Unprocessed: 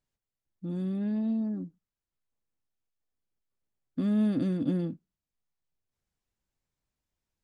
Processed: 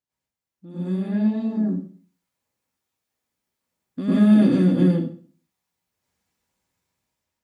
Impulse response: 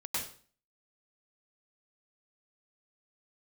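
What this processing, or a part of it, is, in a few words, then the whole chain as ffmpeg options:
far laptop microphone: -filter_complex "[1:a]atrim=start_sample=2205[link_01];[0:a][link_01]afir=irnorm=-1:irlink=0,highpass=frequency=190:poles=1,dynaudnorm=framelen=410:gausssize=5:maxgain=9dB"

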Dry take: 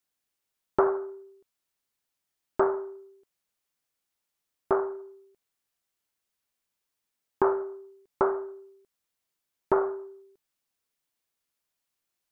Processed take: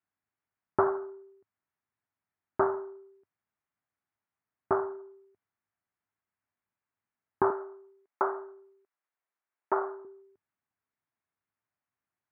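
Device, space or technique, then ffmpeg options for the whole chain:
bass cabinet: -filter_complex "[0:a]asettb=1/sr,asplit=3[link_01][link_02][link_03];[link_01]atrim=end=7.504[link_04];[link_02]atrim=start=7.5:end=10.05,asetpts=PTS-STARTPTS,afade=type=in:duration=0.004:curve=qsin,afade=type=out:start_time=2.546:duration=0.004:curve=qsin,highpass=430[link_05];[link_03]atrim=start=10.046[link_06];[link_04][link_05]acrossfade=duration=0.004:curve1=hsin:curve2=qsin[link_07];[link_07][link_06]acrossfade=duration=0.004:curve1=qsin:curve2=hsin,highpass=76,equalizer=frequency=100:width_type=q:width=4:gain=8,equalizer=frequency=340:width_type=q:width=4:gain=-3,equalizer=frequency=500:width_type=q:width=4:gain=-9,lowpass=frequency=2000:width=0.5412,lowpass=frequency=2000:width=1.3066"

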